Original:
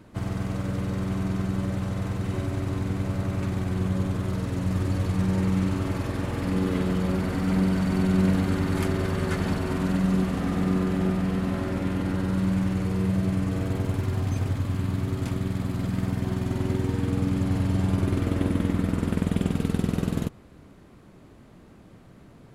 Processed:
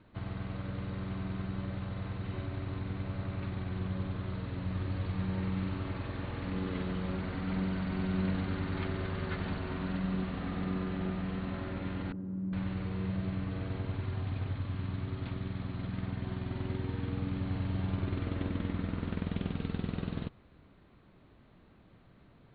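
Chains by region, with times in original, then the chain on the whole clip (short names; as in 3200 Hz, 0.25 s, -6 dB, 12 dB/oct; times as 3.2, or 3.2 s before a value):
12.12–12.53 band-pass 230 Hz, Q 1.6 + air absorption 210 m + doubler 27 ms -12 dB
whole clip: steep low-pass 4300 Hz 96 dB/oct; bell 290 Hz -4.5 dB 3 oct; gain -6.5 dB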